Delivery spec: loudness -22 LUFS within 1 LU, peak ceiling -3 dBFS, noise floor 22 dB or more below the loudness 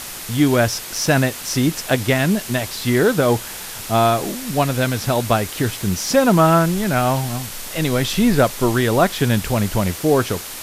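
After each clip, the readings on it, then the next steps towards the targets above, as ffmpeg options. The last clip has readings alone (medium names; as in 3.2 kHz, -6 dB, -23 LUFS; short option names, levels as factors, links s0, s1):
noise floor -32 dBFS; noise floor target -41 dBFS; loudness -18.5 LUFS; peak level -2.0 dBFS; loudness target -22.0 LUFS
-> -af "afftdn=nr=9:nf=-32"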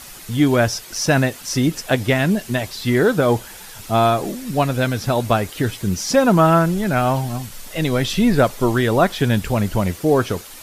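noise floor -38 dBFS; noise floor target -41 dBFS
-> -af "afftdn=nr=6:nf=-38"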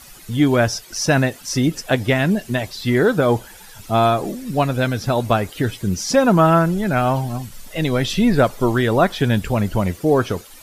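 noise floor -42 dBFS; loudness -19.0 LUFS; peak level -2.5 dBFS; loudness target -22.0 LUFS
-> -af "volume=0.708"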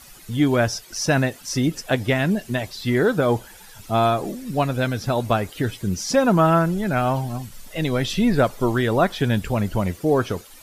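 loudness -22.0 LUFS; peak level -5.5 dBFS; noise floor -45 dBFS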